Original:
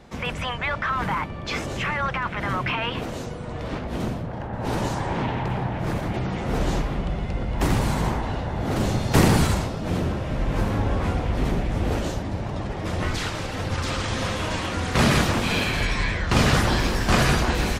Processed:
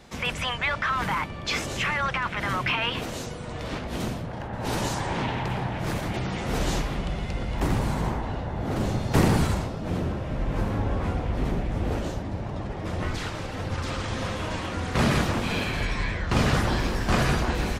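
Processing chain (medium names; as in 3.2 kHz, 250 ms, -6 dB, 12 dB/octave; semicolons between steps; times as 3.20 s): treble shelf 2.2 kHz +8.5 dB, from 7.60 s -4 dB; trim -3 dB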